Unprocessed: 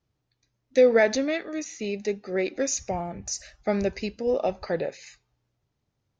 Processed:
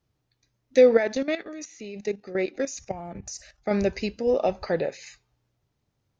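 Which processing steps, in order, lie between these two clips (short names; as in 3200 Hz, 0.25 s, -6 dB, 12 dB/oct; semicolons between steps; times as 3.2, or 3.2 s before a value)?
0.97–3.71 level quantiser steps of 13 dB; gain +2 dB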